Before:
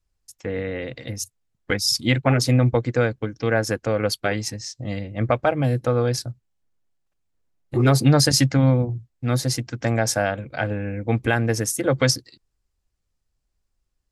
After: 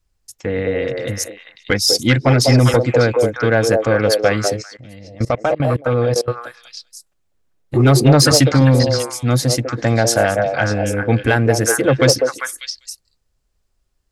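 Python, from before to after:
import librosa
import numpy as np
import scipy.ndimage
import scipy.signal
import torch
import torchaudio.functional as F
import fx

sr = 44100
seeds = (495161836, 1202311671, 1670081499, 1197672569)

y = fx.echo_stepped(x, sr, ms=198, hz=510.0, octaves=1.4, feedback_pct=70, wet_db=0.0)
y = 10.0 ** (-8.0 / 20.0) * np.tanh(y / 10.0 ** (-8.0 / 20.0))
y = fx.level_steps(y, sr, step_db=22, at=(4.62, 6.28))
y = y * librosa.db_to_amplitude(6.5)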